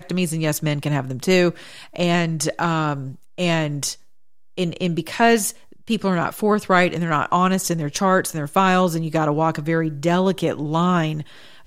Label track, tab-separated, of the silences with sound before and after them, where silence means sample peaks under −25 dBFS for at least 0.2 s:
1.510000	1.960000	silence
3.080000	3.380000	silence
3.930000	4.580000	silence
5.500000	5.900000	silence